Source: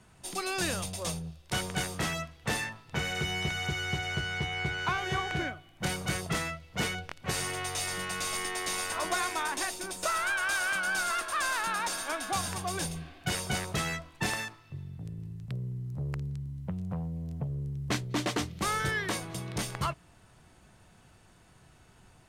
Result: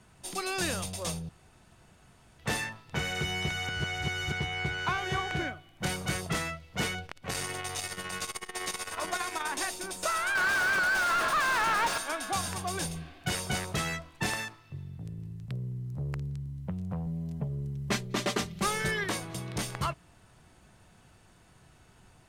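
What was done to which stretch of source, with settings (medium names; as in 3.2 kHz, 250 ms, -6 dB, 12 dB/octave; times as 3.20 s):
1.29–2.39 s: room tone
3.69–4.32 s: reverse
7.06–9.51 s: transformer saturation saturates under 600 Hz
10.35–11.98 s: overdrive pedal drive 35 dB, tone 1.8 kHz, clips at -19 dBFS
17.06–19.04 s: comb 5 ms, depth 66%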